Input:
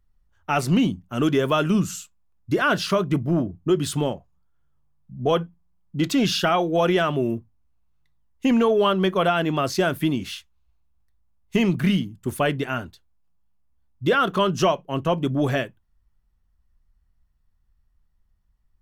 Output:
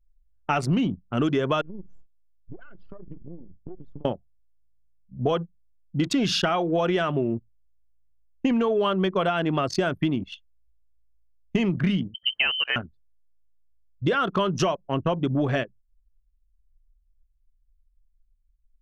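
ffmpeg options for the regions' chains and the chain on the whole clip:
-filter_complex "[0:a]asettb=1/sr,asplit=3[s0][s1][s2];[s0]atrim=end=1.614[s3];[s1]atrim=start=1.61:end=4.05,asetpts=PTS-STARTPTS,afade=t=in:d=0.004:c=qsin,afade=t=out:st=2.436:d=0.004:c=qsin,acompressor=threshold=0.0316:ratio=16:attack=3.2:release=140:knee=1:detection=peak,aeval=exprs='max(val(0),0)':c=same,lowpass=f=3700:p=1[s4];[s2]atrim=start=4.046[s5];[s3][s4]acrossfade=d=0.004:c1=hsin:c2=qsin[s6];[s6][s5]acrossfade=d=0.004:c1=qsin:c2=hsin,asettb=1/sr,asplit=3[s7][s8][s9];[s7]atrim=end=12.144[s10];[s8]atrim=start=12.14:end=12.76,asetpts=PTS-STARTPTS,afade=t=in:d=0.004:c=qsin,afade=t=out:st=0.616:d=0.004:c=qsin,acompressor=mode=upward:threshold=0.0631:ratio=2.5:attack=3.2:release=140:knee=2.83:detection=peak,lowpass=f=2700:t=q:w=0.5098,lowpass=f=2700:t=q:w=0.6013,lowpass=f=2700:t=q:w=0.9,lowpass=f=2700:t=q:w=2.563,afreqshift=-3200[s11];[s9]atrim=start=12.756[s12];[s10][s11]acrossfade=d=0.004:c1=hsin:c2=qsin[s13];[s13][s12]acrossfade=d=0.004:c1=qsin:c2=hsin,anlmdn=63.1,lowpass=7900,acompressor=threshold=0.0708:ratio=6,volume=1.41"

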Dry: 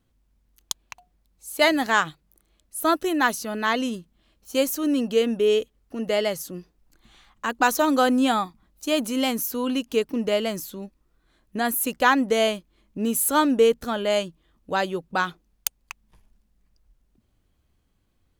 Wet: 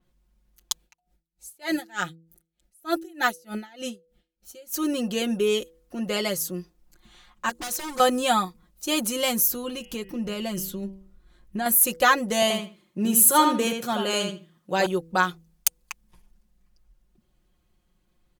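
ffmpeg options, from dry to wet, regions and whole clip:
-filter_complex "[0:a]asettb=1/sr,asplit=3[s0][s1][s2];[s0]atrim=end=0.834[s3];[s1]atrim=start=0.83:end=4.74,asetpts=PTS-STARTPTS,afade=t=in:d=0.004:c=qsin,afade=t=out:st=3.906:d=0.004:c=qsin,asuperstop=centerf=1100:order=8:qfactor=5.1,aeval=exprs='val(0)*pow(10,-30*(0.5-0.5*cos(2*PI*3.3*n/s))/20)':c=same[s4];[s2]atrim=start=4.736[s5];[s3][s4]acrossfade=d=0.004:c1=hsin:c2=qsin[s6];[s6][s5]acrossfade=d=0.004:c1=qsin:c2=hsin,asettb=1/sr,asplit=3[s7][s8][s9];[s7]atrim=end=7.494[s10];[s8]atrim=start=7.49:end=8,asetpts=PTS-STARTPTS,afade=t=in:d=0.004:c=qsin,afade=t=out:st=0.506:d=0.004:c=qsin,equalizer=f=7500:w=1:g=6,acompressor=threshold=0.0178:ratio=2:attack=3.2:release=140:knee=1:detection=peak,aeval=exprs='0.0376*(abs(mod(val(0)/0.0376+3,4)-2)-1)':c=same[s11];[s9]atrim=start=7.996[s12];[s10][s11]acrossfade=d=0.004:c1=hsin:c2=qsin[s13];[s13][s12]acrossfade=d=0.004:c1=qsin:c2=hsin,asettb=1/sr,asplit=3[s14][s15][s16];[s14]atrim=end=9.474[s17];[s15]atrim=start=9.47:end=11.66,asetpts=PTS-STARTPTS,afade=t=in:d=0.004:c=qsin,afade=t=out:st=2.186:d=0.004:c=qsin,lowshelf=f=130:g=11,bandreject=f=193:t=h:w=4,bandreject=f=386:t=h:w=4,bandreject=f=579:t=h:w=4,bandreject=f=772:t=h:w=4,bandreject=f=965:t=h:w=4,bandreject=f=1158:t=h:w=4,bandreject=f=1351:t=h:w=4,bandreject=f=1544:t=h:w=4,bandreject=f=1737:t=h:w=4,bandreject=f=1930:t=h:w=4,bandreject=f=2123:t=h:w=4,bandreject=f=2316:t=h:w=4,bandreject=f=2509:t=h:w=4,bandreject=f=2702:t=h:w=4,bandreject=f=2895:t=h:w=4,bandreject=f=3088:t=h:w=4,bandreject=f=3281:t=h:w=4,acompressor=threshold=0.0355:ratio=2:attack=3.2:release=140:knee=1:detection=peak[s18];[s16]atrim=start=11.656[s19];[s17][s18]acrossfade=d=0.004:c1=hsin:c2=qsin[s20];[s20][s19]acrossfade=d=0.004:c1=qsin:c2=hsin,asettb=1/sr,asplit=3[s21][s22][s23];[s21]atrim=end=12.424[s24];[s22]atrim=start=12.42:end=14.86,asetpts=PTS-STARTPTS,afade=t=in:d=0.004:c=qsin,afade=t=out:st=2.436:d=0.004:c=qsin,highpass=f=110:w=0.5412,highpass=f=110:w=1.3066,asplit=2[s25][s26];[s26]adelay=80,lowpass=f=4300:p=1,volume=0.562,asplit=2[s27][s28];[s28]adelay=80,lowpass=f=4300:p=1,volume=0.2,asplit=2[s29][s30];[s30]adelay=80,lowpass=f=4300:p=1,volume=0.2[s31];[s25][s27][s29][s31]amix=inputs=4:normalize=0,atrim=end_sample=107604[s32];[s23]atrim=start=14.856[s33];[s24][s32]acrossfade=d=0.004:c1=hsin:c2=qsin[s34];[s34][s33]acrossfade=d=0.004:c1=qsin:c2=hsin,aecho=1:1:5.6:0.81,bandreject=f=164.2:t=h:w=4,bandreject=f=328.4:t=h:w=4,bandreject=f=492.6:t=h:w=4,adynamicequalizer=threshold=0.01:dfrequency=4800:dqfactor=0.7:tfrequency=4800:tqfactor=0.7:attack=5:release=100:ratio=0.375:range=3.5:mode=boostabove:tftype=highshelf,volume=0.841"

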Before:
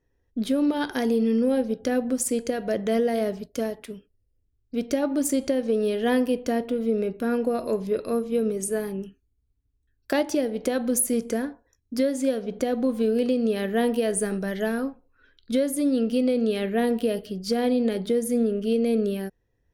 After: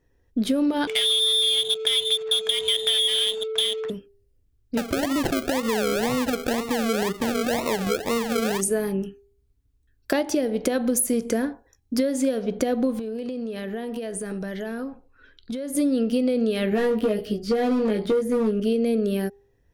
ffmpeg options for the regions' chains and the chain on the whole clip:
-filter_complex "[0:a]asettb=1/sr,asplit=3[s0][s1][s2];[s0]atrim=end=0.874[s3];[s1]atrim=start=0.87:end=3.9,asetpts=PTS-STARTPTS,afade=t=in:d=0.004:c=qsin,afade=t=out:st=3.026:d=0.004:c=qsin,lowpass=f=3200:t=q:w=0.5098,lowpass=f=3200:t=q:w=0.6013,lowpass=f=3200:t=q:w=0.9,lowpass=f=3200:t=q:w=2.563,afreqshift=-3800,aeval=exprs='val(0)+0.0251*sin(2*PI*440*n/s)':c=same,adynamicsmooth=sensitivity=5.5:basefreq=620[s4];[s2]atrim=start=3.896[s5];[s3][s4]acrossfade=d=0.004:c1=hsin:c2=qsin[s6];[s6][s5]acrossfade=d=0.004:c1=qsin:c2=hsin,asettb=1/sr,asplit=3[s7][s8][s9];[s7]atrim=end=4.774[s10];[s8]atrim=start=4.77:end=8.61,asetpts=PTS-STARTPTS,afade=t=in:d=0.004:c=qsin,afade=t=out:st=3.836:d=0.004:c=qsin,highshelf=f=10000:g=11,acompressor=threshold=0.0501:ratio=3:attack=3.2:release=140:knee=1:detection=peak,acrusher=samples=38:mix=1:aa=0.000001:lfo=1:lforange=22.8:lforate=2[s11];[s9]atrim=start=8.606[s12];[s10][s11]acrossfade=d=0.004:c1=hsin:c2=qsin[s13];[s13][s12]acrossfade=d=0.004:c1=qsin:c2=hsin,asettb=1/sr,asplit=3[s14][s15][s16];[s14]atrim=end=12.994[s17];[s15]atrim=start=12.99:end=15.75,asetpts=PTS-STARTPTS,afade=t=in:d=0.004:c=qsin,afade=t=out:st=2.756:d=0.004:c=qsin,highshelf=f=12000:g=-8.5,acompressor=threshold=0.0224:ratio=12:attack=3.2:release=140:knee=1:detection=peak[s18];[s16]atrim=start=15.746[s19];[s17][s18]acrossfade=d=0.004:c1=hsin:c2=qsin[s20];[s20][s19]acrossfade=d=0.004:c1=qsin:c2=hsin,asettb=1/sr,asplit=3[s21][s22][s23];[s21]atrim=end=16.704[s24];[s22]atrim=start=16.7:end=18.6,asetpts=PTS-STARTPTS,afade=t=in:d=0.004:c=qsin,afade=t=out:st=1.896:d=0.004:c=qsin,acrossover=split=2900[s25][s26];[s26]acompressor=threshold=0.00398:ratio=4:attack=1:release=60[s27];[s25][s27]amix=inputs=2:normalize=0,volume=8.91,asoftclip=hard,volume=0.112,asplit=2[s28][s29];[s29]adelay=19,volume=0.631[s30];[s28][s30]amix=inputs=2:normalize=0,atrim=end_sample=83790[s31];[s23]atrim=start=18.596[s32];[s24][s31]acrossfade=d=0.004:c1=hsin:c2=qsin[s33];[s33][s32]acrossfade=d=0.004:c1=qsin:c2=hsin,bandreject=f=400.5:t=h:w=4,bandreject=f=801:t=h:w=4,acompressor=threshold=0.0562:ratio=6,volume=2"

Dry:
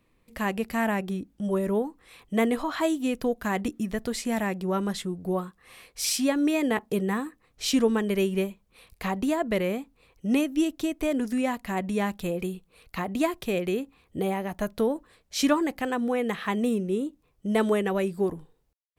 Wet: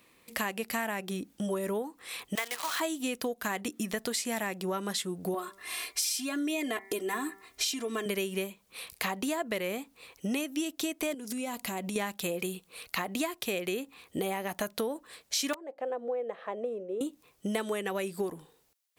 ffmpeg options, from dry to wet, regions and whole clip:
-filter_complex "[0:a]asettb=1/sr,asplit=3[s0][s1][s2];[s0]atrim=end=2.354[s3];[s1]atrim=start=2.35:end=2.8,asetpts=PTS-STARTPTS,afade=t=in:d=0.004:c=qsin,afade=t=out:st=0.446:d=0.004:c=qsin,highpass=960,highshelf=f=9100:g=-9.5,acrusher=bits=7:dc=4:mix=0:aa=0.000001[s4];[s2]atrim=start=2.796[s5];[s3][s4]acrossfade=d=0.004:c1=hsin:c2=qsin[s6];[s6][s5]acrossfade=d=0.004:c1=qsin:c2=hsin,asettb=1/sr,asplit=3[s7][s8][s9];[s7]atrim=end=5.344[s10];[s8]atrim=start=5.34:end=8.06,asetpts=PTS-STARTPTS,afade=t=in:d=0.004:c=qsin,afade=t=out:st=2.716:d=0.004:c=qsin,acompressor=threshold=0.0355:ratio=2.5:attack=3.2:release=140:knee=1:detection=peak,aecho=1:1:2.9:0.85,atrim=end_sample=119952,bandreject=f=194.9:t=h:w=4,bandreject=f=389.8:t=h:w=4,bandreject=f=584.7:t=h:w=4,bandreject=f=779.6:t=h:w=4,bandreject=f=974.5:t=h:w=4,bandreject=f=1169.4:t=h:w=4,bandreject=f=1364.3:t=h:w=4,bandreject=f=1559.2:t=h:w=4,bandreject=f=1754.1:t=h:w=4,bandreject=f=1949:t=h:w=4,bandreject=f=2143.9:t=h:w=4,bandreject=f=2338.8:t=h:w=4[s11];[s9]atrim=start=8.056[s12];[s10][s11]acrossfade=d=0.004:c1=hsin:c2=qsin[s13];[s13][s12]acrossfade=d=0.004:c1=qsin:c2=hsin,asettb=1/sr,asplit=3[s14][s15][s16];[s14]atrim=end=11.144[s17];[s15]atrim=start=11.14:end=11.96,asetpts=PTS-STARTPTS,afade=t=in:d=0.004:c=qsin,afade=t=out:st=0.816:d=0.004:c=qsin,bandreject=f=1800:w=9.5,acompressor=threshold=0.0224:ratio=10:attack=3.2:release=140:knee=1:detection=peak,equalizer=f=1500:w=0.64:g=-5.5[s18];[s16]atrim=start=11.956[s19];[s17][s18]acrossfade=d=0.004:c1=hsin:c2=qsin[s20];[s20][s19]acrossfade=d=0.004:c1=qsin:c2=hsin,asettb=1/sr,asplit=3[s21][s22][s23];[s21]atrim=end=15.534[s24];[s22]atrim=start=15.53:end=17.01,asetpts=PTS-STARTPTS,afade=t=in:d=0.004:c=qsin,afade=t=out:st=1.476:d=0.004:c=qsin,bandpass=f=560:t=q:w=4.6,aeval=exprs='(mod(14.1*val(0)+1,2)-1)/14.1':c=same[s25];[s23]atrim=start=17.006[s26];[s24][s25]acrossfade=d=0.004:c1=hsin:c2=qsin[s27];[s27][s26]acrossfade=d=0.004:c1=qsin:c2=hsin,highpass=f=370:p=1,highshelf=f=2700:g=8,acompressor=threshold=0.0141:ratio=6,volume=2.24"

